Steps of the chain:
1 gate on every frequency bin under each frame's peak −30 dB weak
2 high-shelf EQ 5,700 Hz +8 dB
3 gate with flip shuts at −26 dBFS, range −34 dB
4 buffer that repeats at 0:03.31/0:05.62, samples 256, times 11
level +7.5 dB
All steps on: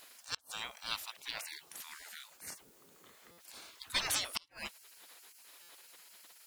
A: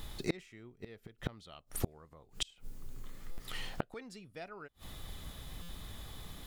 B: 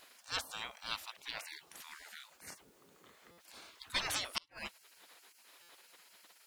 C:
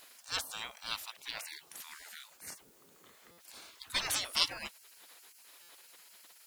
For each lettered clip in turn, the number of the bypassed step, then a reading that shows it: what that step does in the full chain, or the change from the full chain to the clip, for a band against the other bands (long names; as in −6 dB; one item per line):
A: 1, 125 Hz band +21.5 dB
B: 2, 8 kHz band −5.0 dB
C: 3, change in momentary loudness spread +2 LU